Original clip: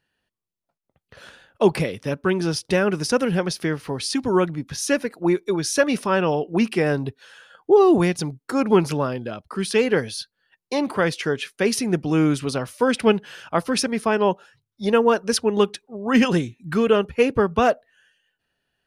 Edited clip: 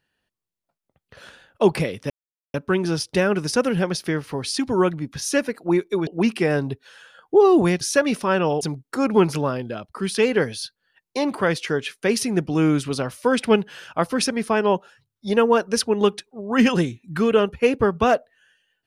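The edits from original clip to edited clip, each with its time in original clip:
0:02.10: splice in silence 0.44 s
0:05.63–0:06.43: move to 0:08.17

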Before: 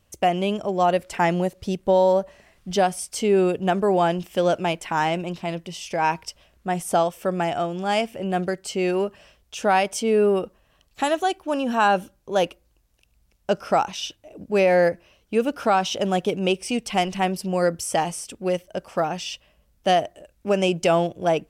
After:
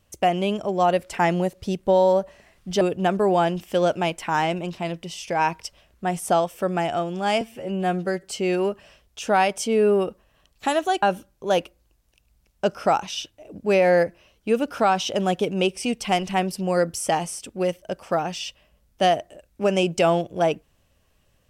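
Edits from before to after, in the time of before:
0:02.81–0:03.44: remove
0:08.04–0:08.59: time-stretch 1.5×
0:11.38–0:11.88: remove

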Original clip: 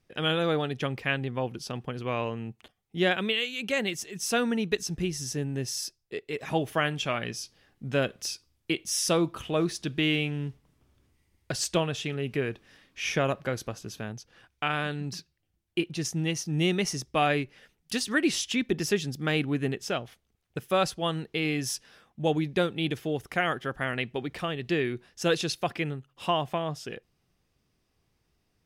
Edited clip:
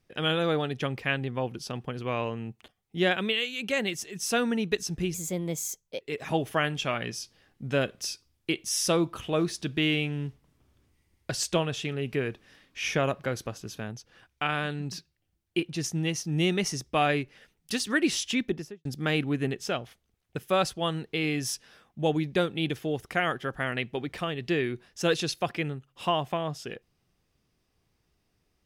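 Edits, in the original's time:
0:05.14–0:06.22: play speed 124%
0:18.57–0:19.06: fade out and dull

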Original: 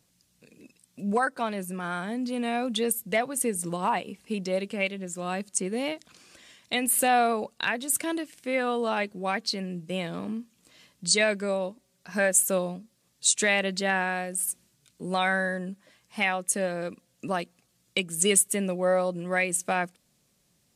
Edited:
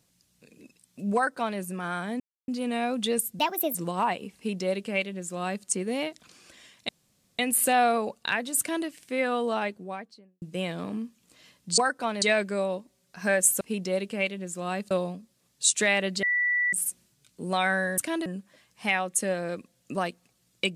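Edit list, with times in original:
0:01.15–0:01.59: duplicate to 0:11.13
0:02.20: splice in silence 0.28 s
0:03.11–0:03.60: play speed 137%
0:04.21–0:05.51: duplicate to 0:12.52
0:06.74: splice in room tone 0.50 s
0:07.94–0:08.22: duplicate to 0:15.59
0:08.77–0:09.77: fade out and dull
0:13.84–0:14.34: beep over 1,960 Hz −22 dBFS

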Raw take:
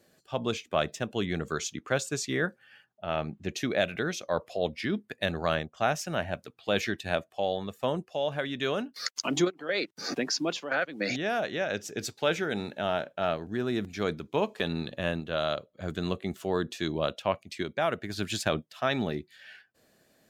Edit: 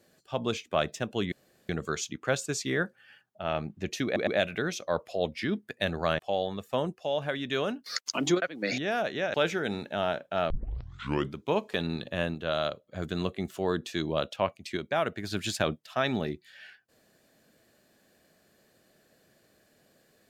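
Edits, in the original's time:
0:01.32: splice in room tone 0.37 s
0:03.68: stutter 0.11 s, 3 plays
0:05.60–0:07.29: remove
0:09.52–0:10.80: remove
0:11.72–0:12.20: remove
0:13.36: tape start 0.87 s

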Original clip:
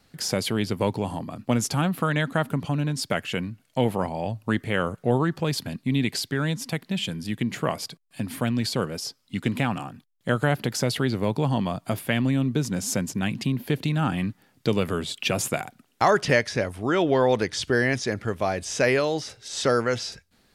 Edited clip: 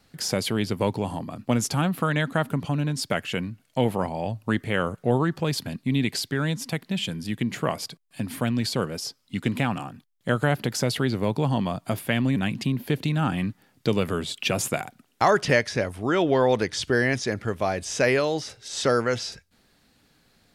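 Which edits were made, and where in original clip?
0:12.36–0:13.16: remove

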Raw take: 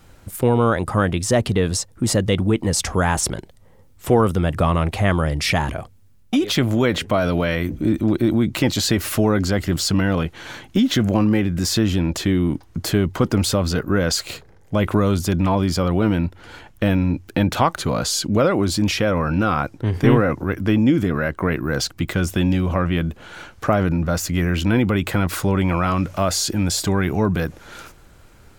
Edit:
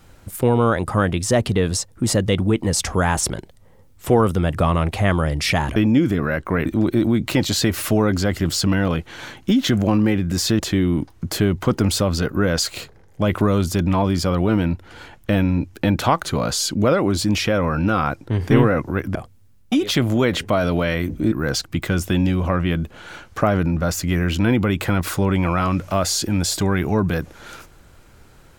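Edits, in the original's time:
0:05.76–0:07.93: swap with 0:20.68–0:21.58
0:11.86–0:12.12: remove

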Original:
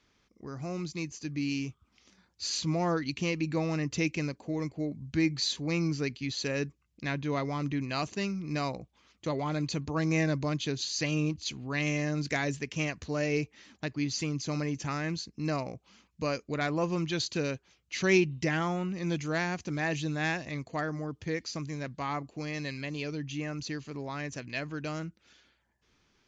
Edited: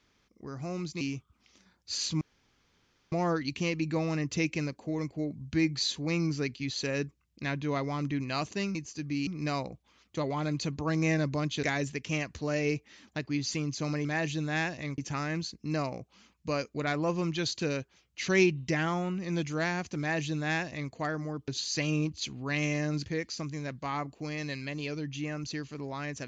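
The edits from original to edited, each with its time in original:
0:01.01–0:01.53: move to 0:08.36
0:02.73: splice in room tone 0.91 s
0:10.72–0:12.30: move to 0:21.22
0:19.73–0:20.66: duplicate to 0:14.72

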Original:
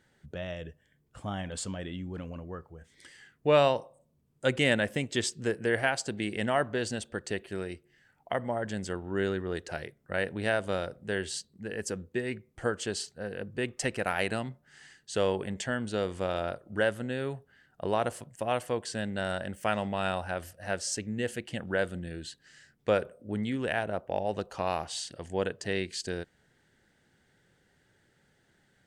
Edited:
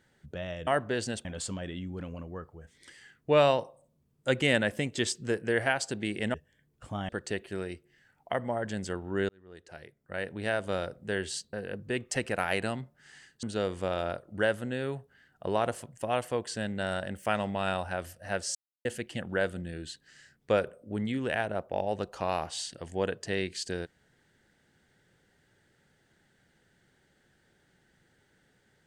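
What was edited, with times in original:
0:00.67–0:01.42: swap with 0:06.51–0:07.09
0:09.29–0:10.83: fade in
0:11.53–0:13.21: remove
0:15.11–0:15.81: remove
0:20.93–0:21.23: silence

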